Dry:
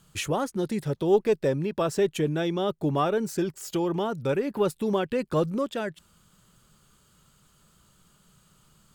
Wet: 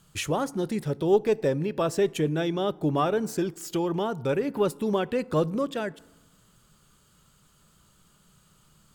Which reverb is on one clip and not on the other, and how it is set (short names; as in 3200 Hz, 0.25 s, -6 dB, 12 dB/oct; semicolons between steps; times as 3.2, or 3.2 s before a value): FDN reverb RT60 1.1 s, low-frequency decay 1.2×, high-frequency decay 0.5×, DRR 19.5 dB